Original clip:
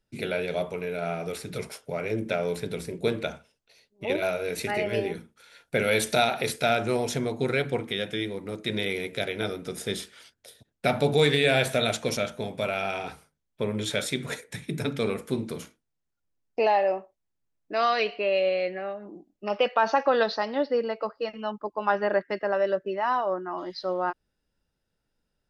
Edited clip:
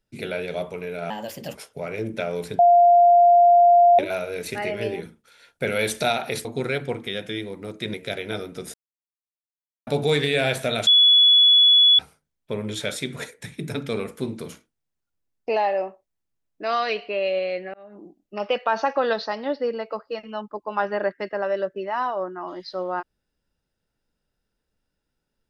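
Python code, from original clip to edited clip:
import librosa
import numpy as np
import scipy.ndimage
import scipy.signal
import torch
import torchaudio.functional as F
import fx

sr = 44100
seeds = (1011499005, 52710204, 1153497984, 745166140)

y = fx.edit(x, sr, fx.speed_span(start_s=1.1, length_s=0.57, speed=1.27),
    fx.bleep(start_s=2.71, length_s=1.4, hz=698.0, db=-10.5),
    fx.cut(start_s=6.57, length_s=0.72),
    fx.cut(start_s=8.78, length_s=0.26),
    fx.silence(start_s=9.84, length_s=1.13),
    fx.bleep(start_s=11.97, length_s=1.12, hz=3400.0, db=-11.0),
    fx.fade_in_span(start_s=18.84, length_s=0.26), tone=tone)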